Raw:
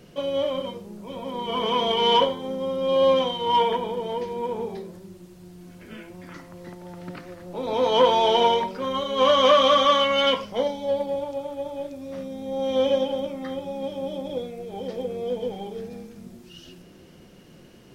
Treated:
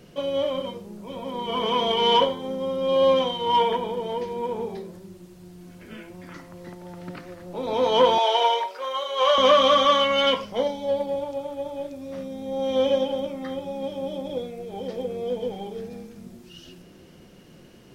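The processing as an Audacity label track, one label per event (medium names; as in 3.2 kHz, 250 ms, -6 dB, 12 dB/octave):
8.180000	9.380000	high-pass 520 Hz 24 dB/octave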